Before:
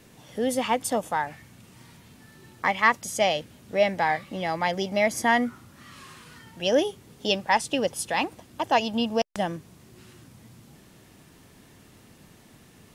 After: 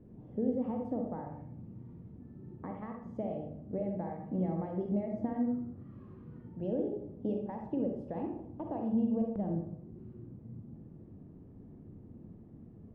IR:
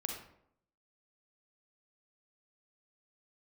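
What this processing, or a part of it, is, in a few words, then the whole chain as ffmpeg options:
television next door: -filter_complex "[0:a]acompressor=threshold=0.0447:ratio=6,lowpass=340[s0];[1:a]atrim=start_sample=2205[s1];[s0][s1]afir=irnorm=-1:irlink=0,volume=1.33"

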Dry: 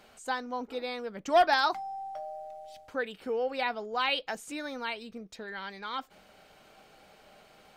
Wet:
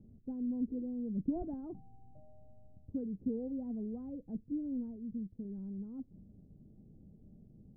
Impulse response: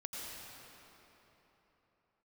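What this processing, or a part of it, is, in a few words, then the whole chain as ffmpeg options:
the neighbour's flat through the wall: -filter_complex "[0:a]asettb=1/sr,asplit=3[s0][s1][s2];[s0]atrim=end=4.964[s3];[s1]atrim=start=4.96:end=5.45,asetpts=PTS-STARTPTS,afade=t=in:d=0.004:c=qsin,afade=t=out:st=0.486:d=0.004:c=qsin,tiltshelf=f=970:g=-4[s4];[s2]atrim=start=5.446[s5];[s3][s4]acrossfade=d=0.004:c1=hsin:c2=qsin[s6];[s6][s5]acrossfade=d=0.004:c1=qsin:c2=hsin,lowpass=f=250:w=0.5412,lowpass=f=250:w=1.3066,equalizer=f=100:t=o:w=0.64:g=6,volume=3.16"

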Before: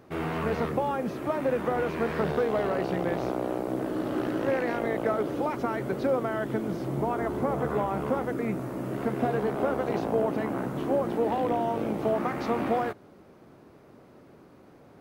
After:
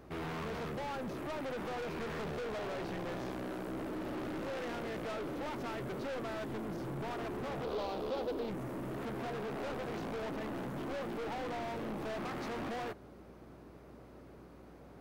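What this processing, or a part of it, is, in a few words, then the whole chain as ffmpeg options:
valve amplifier with mains hum: -filter_complex "[0:a]aeval=exprs='(tanh(63.1*val(0)+0.15)-tanh(0.15))/63.1':c=same,aeval=exprs='val(0)+0.00126*(sin(2*PI*60*n/s)+sin(2*PI*2*60*n/s)/2+sin(2*PI*3*60*n/s)/3+sin(2*PI*4*60*n/s)/4+sin(2*PI*5*60*n/s)/5)':c=same,asettb=1/sr,asplit=3[s0][s1][s2];[s0]atrim=end=7.644[s3];[s1]atrim=start=7.64:end=8.5,asetpts=PTS-STARTPTS,afade=t=in:d=0.004:c=qsin,afade=t=out:st=0.856:d=0.004:c=qsin,equalizer=f=125:t=o:w=1:g=-11,equalizer=f=500:t=o:w=1:g=7,equalizer=f=2000:t=o:w=1:g=-9,equalizer=f=4000:t=o:w=1:g=10,equalizer=f=8000:t=o:w=1:g=-7[s4];[s2]atrim=start=8.496[s5];[s3][s4]acrossfade=d=0.004:c1=hsin:c2=qsin[s6];[s6][s5]acrossfade=d=0.004:c1=qsin:c2=hsin,volume=0.841"

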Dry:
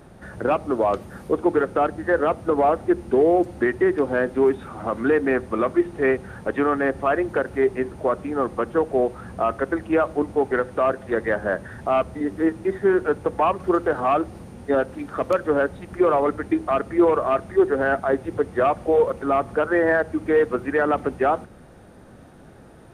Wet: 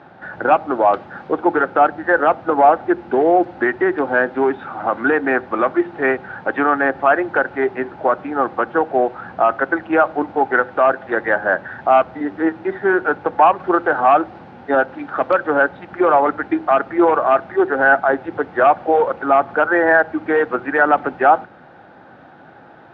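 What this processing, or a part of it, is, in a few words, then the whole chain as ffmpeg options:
kitchen radio: -af "highpass=180,equalizer=f=210:t=q:w=4:g=-6,equalizer=f=430:t=q:w=4:g=-5,equalizer=f=810:t=q:w=4:g=9,equalizer=f=1500:t=q:w=4:g=8,lowpass=f=3900:w=0.5412,lowpass=f=3900:w=1.3066,volume=1.58"

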